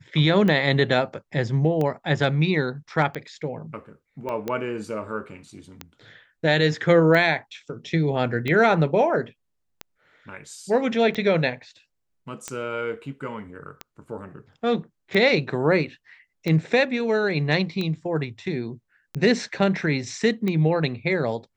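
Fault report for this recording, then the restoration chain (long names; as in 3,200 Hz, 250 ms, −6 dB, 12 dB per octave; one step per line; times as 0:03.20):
scratch tick 45 rpm −15 dBFS
0:04.29: click −19 dBFS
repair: click removal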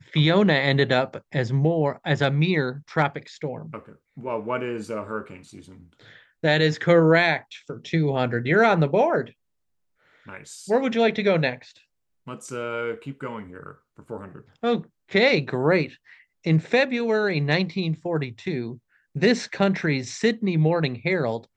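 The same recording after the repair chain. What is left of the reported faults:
0:04.29: click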